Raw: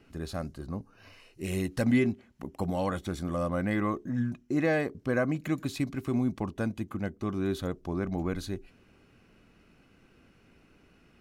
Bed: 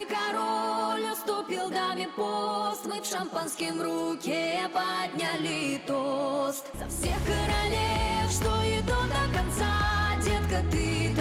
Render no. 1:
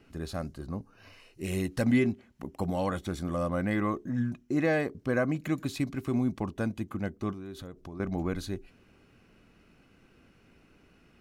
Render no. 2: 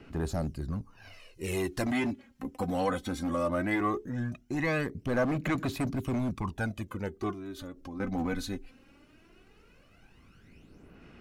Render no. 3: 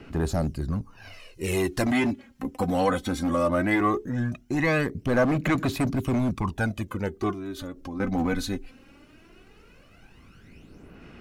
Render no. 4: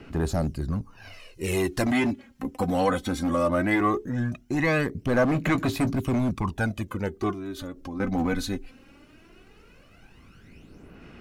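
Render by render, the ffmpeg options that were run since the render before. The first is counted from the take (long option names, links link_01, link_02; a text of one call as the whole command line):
ffmpeg -i in.wav -filter_complex "[0:a]asettb=1/sr,asplit=3[link_01][link_02][link_03];[link_01]atrim=end=7.324[link_04];[link_02]atrim=start=7.32:end=8,asetpts=PTS-STARTPTS,afade=type=in:duration=0.004:curve=qsin,afade=type=out:start_time=0.676:duration=0.004:curve=qsin,acompressor=threshold=-39dB:ratio=5:attack=3.2:release=140:knee=1:detection=peak[link_05];[link_03]atrim=start=7.996[link_06];[link_04][link_05]acrossfade=duration=0.004:curve1=hsin:curve2=qsin[link_07];[link_07][link_06]acrossfade=duration=0.004:curve1=qsin:curve2=hsin" out.wav
ffmpeg -i in.wav -filter_complex "[0:a]aphaser=in_gain=1:out_gain=1:delay=4:decay=0.61:speed=0.18:type=sinusoidal,acrossover=split=660|2600[link_01][link_02][link_03];[link_01]asoftclip=type=hard:threshold=-28dB[link_04];[link_04][link_02][link_03]amix=inputs=3:normalize=0" out.wav
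ffmpeg -i in.wav -af "volume=6dB" out.wav
ffmpeg -i in.wav -filter_complex "[0:a]asettb=1/sr,asplit=3[link_01][link_02][link_03];[link_01]atrim=end=5.324[link_04];[link_02]atrim=start=5.32:end=5.97,asetpts=PTS-STARTPTS,afade=type=in:duration=0.004:curve=qsin,afade=type=out:start_time=0.646:duration=0.004:curve=qsin,asplit=2[link_05][link_06];[link_06]adelay=18,volume=-11dB[link_07];[link_05][link_07]amix=inputs=2:normalize=0,atrim=end_sample=28665[link_08];[link_03]atrim=start=5.966[link_09];[link_04][link_08]acrossfade=duration=0.004:curve1=hsin:curve2=qsin[link_10];[link_10][link_09]acrossfade=duration=0.004:curve1=qsin:curve2=hsin" out.wav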